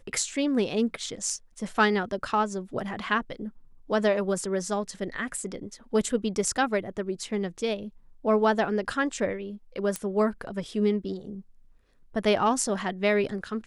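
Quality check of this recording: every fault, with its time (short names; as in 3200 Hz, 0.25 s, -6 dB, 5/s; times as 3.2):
9.96 pop -15 dBFS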